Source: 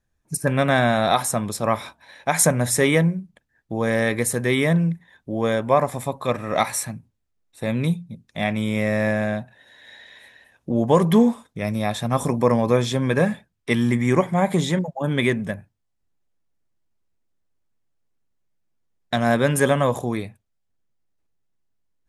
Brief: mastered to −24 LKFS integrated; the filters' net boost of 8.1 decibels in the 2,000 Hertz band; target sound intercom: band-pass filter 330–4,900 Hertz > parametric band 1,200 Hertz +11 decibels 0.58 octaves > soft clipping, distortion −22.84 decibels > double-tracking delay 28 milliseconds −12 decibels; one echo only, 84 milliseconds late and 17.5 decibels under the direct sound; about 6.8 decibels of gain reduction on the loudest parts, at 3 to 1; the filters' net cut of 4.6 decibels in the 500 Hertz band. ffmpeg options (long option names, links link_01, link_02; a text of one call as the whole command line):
ffmpeg -i in.wav -filter_complex "[0:a]equalizer=frequency=500:width_type=o:gain=-6,equalizer=frequency=2000:width_type=o:gain=7,acompressor=threshold=-22dB:ratio=3,highpass=330,lowpass=4900,equalizer=frequency=1200:width_type=o:width=0.58:gain=11,aecho=1:1:84:0.133,asoftclip=threshold=-9dB,asplit=2[link_01][link_02];[link_02]adelay=28,volume=-12dB[link_03];[link_01][link_03]amix=inputs=2:normalize=0,volume=1.5dB" out.wav